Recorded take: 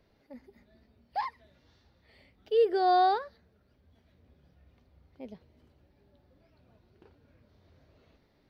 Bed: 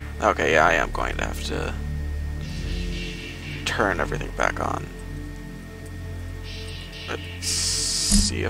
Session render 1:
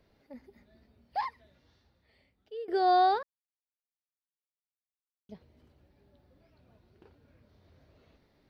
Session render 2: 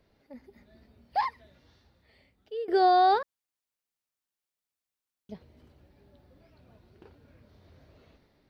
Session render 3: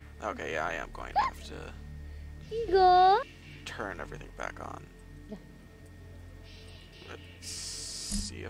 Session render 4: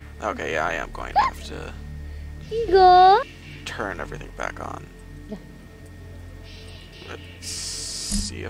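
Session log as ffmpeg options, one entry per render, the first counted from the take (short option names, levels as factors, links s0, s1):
-filter_complex "[0:a]asplit=4[s0][s1][s2][s3];[s0]atrim=end=2.68,asetpts=PTS-STARTPTS,afade=t=out:st=1.26:d=1.42:silence=0.105925[s4];[s1]atrim=start=2.68:end=3.23,asetpts=PTS-STARTPTS,afade=t=in:d=0.004:c=hsin:silence=0.105925,afade=t=out:st=0.546:d=0.004:c=hsin[s5];[s2]atrim=start=3.23:end=5.29,asetpts=PTS-STARTPTS,volume=0[s6];[s3]atrim=start=5.29,asetpts=PTS-STARTPTS,afade=t=in:d=0.004:c=hsin[s7];[s4][s5][s6][s7]concat=n=4:v=0:a=1"
-af "dynaudnorm=f=160:g=7:m=1.78,alimiter=limit=0.2:level=0:latency=1"
-filter_complex "[1:a]volume=0.168[s0];[0:a][s0]amix=inputs=2:normalize=0"
-af "volume=2.66"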